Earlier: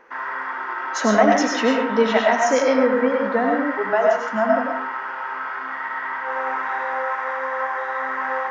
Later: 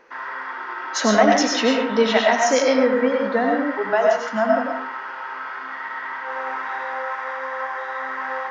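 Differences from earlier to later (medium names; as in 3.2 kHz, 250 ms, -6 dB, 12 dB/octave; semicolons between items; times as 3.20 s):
background -3.5 dB; master: add peaking EQ 4.3 kHz +7.5 dB 1.2 oct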